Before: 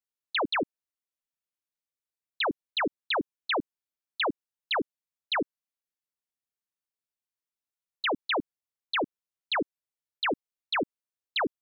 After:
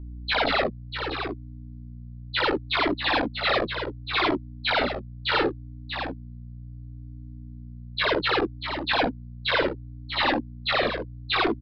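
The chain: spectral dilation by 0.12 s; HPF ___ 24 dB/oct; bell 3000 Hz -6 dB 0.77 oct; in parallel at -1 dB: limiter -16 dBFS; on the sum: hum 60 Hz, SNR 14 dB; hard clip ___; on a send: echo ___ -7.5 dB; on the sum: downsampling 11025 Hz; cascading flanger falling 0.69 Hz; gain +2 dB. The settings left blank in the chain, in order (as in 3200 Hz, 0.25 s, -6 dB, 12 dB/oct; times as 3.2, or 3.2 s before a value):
170 Hz, -17 dBFS, 0.641 s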